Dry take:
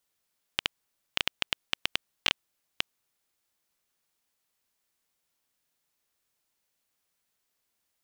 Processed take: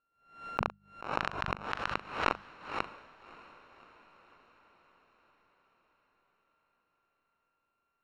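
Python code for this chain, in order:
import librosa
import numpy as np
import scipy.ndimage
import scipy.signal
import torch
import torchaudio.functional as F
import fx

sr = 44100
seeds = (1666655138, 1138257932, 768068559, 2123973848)

y = np.r_[np.sort(x[:len(x) // 32 * 32].reshape(-1, 32), axis=1).ravel(), x[len(x) // 32 * 32:]]
y = scipy.signal.sosfilt(scipy.signal.butter(2, 1800.0, 'lowpass', fs=sr, output='sos'), y)
y = fx.hum_notches(y, sr, base_hz=50, count=4)
y = fx.doubler(y, sr, ms=40.0, db=-14)
y = fx.echo_diffused(y, sr, ms=591, feedback_pct=59, wet_db=-16)
y = fx.pre_swell(y, sr, db_per_s=110.0)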